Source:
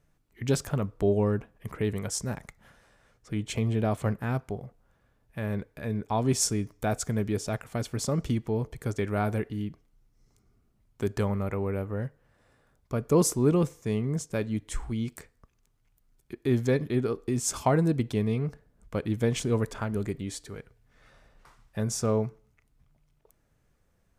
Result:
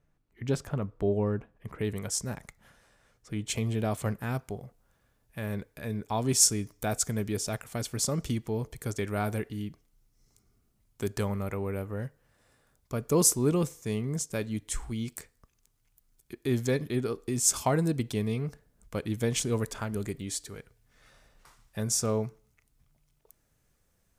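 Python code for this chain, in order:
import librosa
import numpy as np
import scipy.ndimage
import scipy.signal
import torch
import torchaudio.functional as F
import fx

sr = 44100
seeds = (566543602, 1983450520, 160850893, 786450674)

y = fx.high_shelf(x, sr, hz=3800.0, db=fx.steps((0.0, -7.0), (1.78, 5.5), (3.46, 11.0)))
y = F.gain(torch.from_numpy(y), -3.0).numpy()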